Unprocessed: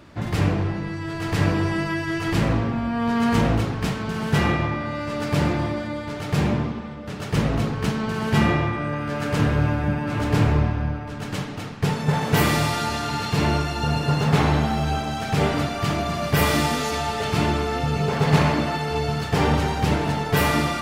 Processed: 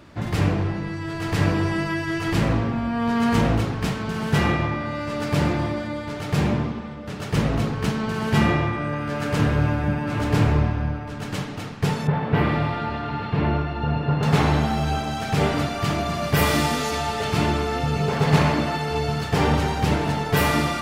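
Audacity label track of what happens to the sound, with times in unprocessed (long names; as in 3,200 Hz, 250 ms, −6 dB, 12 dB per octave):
12.070000	14.230000	high-frequency loss of the air 430 metres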